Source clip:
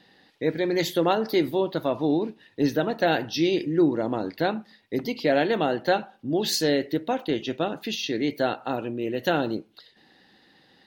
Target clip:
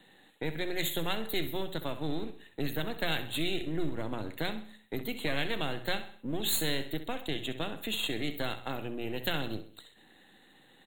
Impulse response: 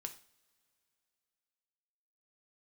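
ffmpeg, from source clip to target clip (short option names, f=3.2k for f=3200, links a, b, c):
-filter_complex "[0:a]aeval=exprs='if(lt(val(0),0),0.447*val(0),val(0))':c=same,highshelf=f=9.2k:g=9.5,bandreject=f=60:t=h:w=6,bandreject=f=120:t=h:w=6,bandreject=f=180:t=h:w=6,acrossover=split=140|1800[a][b][c];[b]acompressor=threshold=-35dB:ratio=6[d];[a][d][c]amix=inputs=3:normalize=0,asuperstop=centerf=5300:order=12:qfactor=2,asplit=2[e][f];[f]aecho=0:1:65|130|195|260:0.237|0.104|0.0459|0.0202[g];[e][g]amix=inputs=2:normalize=0"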